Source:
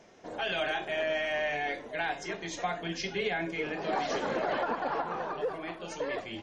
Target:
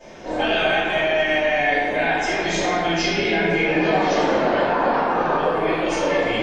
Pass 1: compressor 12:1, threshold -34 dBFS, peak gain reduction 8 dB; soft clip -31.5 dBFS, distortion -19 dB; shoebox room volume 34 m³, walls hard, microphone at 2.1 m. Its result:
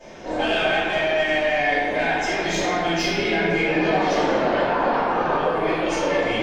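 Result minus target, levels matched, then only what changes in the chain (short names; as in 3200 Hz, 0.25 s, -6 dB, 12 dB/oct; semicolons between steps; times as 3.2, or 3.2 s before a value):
soft clip: distortion +19 dB
change: soft clip -20.5 dBFS, distortion -37 dB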